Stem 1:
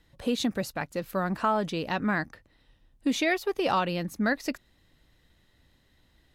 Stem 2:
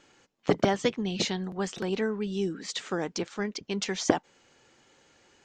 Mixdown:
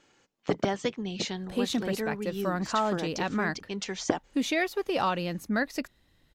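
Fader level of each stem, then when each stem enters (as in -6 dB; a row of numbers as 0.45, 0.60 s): -1.5, -3.5 dB; 1.30, 0.00 s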